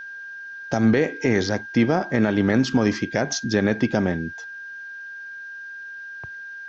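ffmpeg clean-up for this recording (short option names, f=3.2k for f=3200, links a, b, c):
-af "bandreject=f=1.6k:w=30,agate=range=-21dB:threshold=-29dB"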